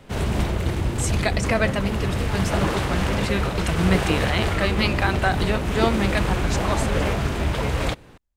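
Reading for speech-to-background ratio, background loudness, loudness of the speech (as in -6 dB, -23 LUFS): -1.5 dB, -24.5 LUFS, -26.0 LUFS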